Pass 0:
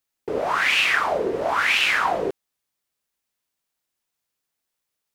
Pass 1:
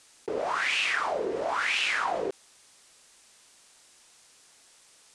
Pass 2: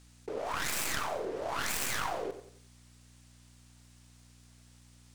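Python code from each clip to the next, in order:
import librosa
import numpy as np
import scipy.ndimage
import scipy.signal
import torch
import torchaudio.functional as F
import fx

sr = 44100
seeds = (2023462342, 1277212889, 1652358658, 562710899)

y1 = scipy.signal.sosfilt(scipy.signal.butter(6, 9800.0, 'lowpass', fs=sr, output='sos'), x)
y1 = fx.bass_treble(y1, sr, bass_db=-6, treble_db=4)
y1 = fx.env_flatten(y1, sr, amount_pct=50)
y1 = y1 * librosa.db_to_amplitude(-9.0)
y2 = fx.tracing_dist(y1, sr, depth_ms=0.44)
y2 = fx.add_hum(y2, sr, base_hz=60, snr_db=20)
y2 = fx.echo_feedback(y2, sr, ms=92, feedback_pct=37, wet_db=-11)
y2 = y2 * librosa.db_to_amplitude(-6.5)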